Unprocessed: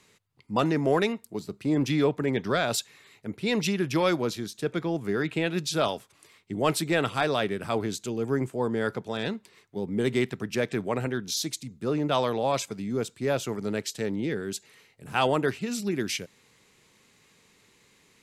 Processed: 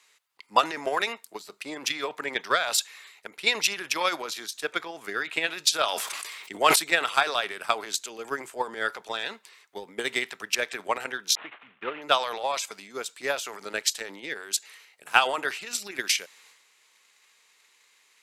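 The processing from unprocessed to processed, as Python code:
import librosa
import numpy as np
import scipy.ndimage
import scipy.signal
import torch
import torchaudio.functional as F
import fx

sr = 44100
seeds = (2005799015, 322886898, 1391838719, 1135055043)

y = fx.cvsd(x, sr, bps=16000, at=(11.35, 12.02))
y = scipy.signal.sosfilt(scipy.signal.butter(2, 940.0, 'highpass', fs=sr, output='sos'), y)
y = fx.transient(y, sr, attack_db=12, sustain_db=8)
y = fx.sustainer(y, sr, db_per_s=28.0, at=(5.84, 6.76))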